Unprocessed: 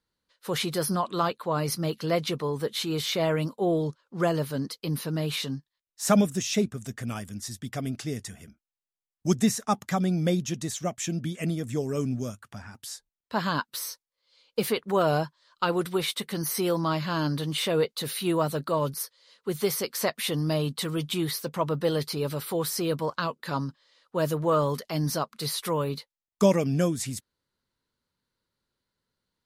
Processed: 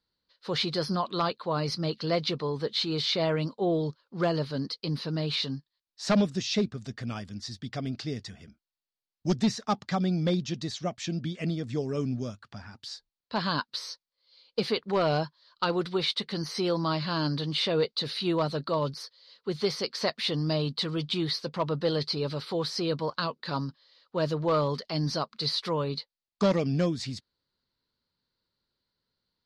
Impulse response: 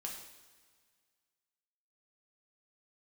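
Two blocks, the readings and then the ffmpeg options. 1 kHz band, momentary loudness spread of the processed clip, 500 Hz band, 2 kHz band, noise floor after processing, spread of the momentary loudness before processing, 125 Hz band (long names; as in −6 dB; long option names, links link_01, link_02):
−2.5 dB, 11 LU, −2.0 dB, −2.0 dB, below −85 dBFS, 11 LU, −1.5 dB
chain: -af "highshelf=frequency=2400:gain=-6,asoftclip=type=hard:threshold=-17dB,lowpass=frequency=4500:width_type=q:width=4,volume=-1.5dB"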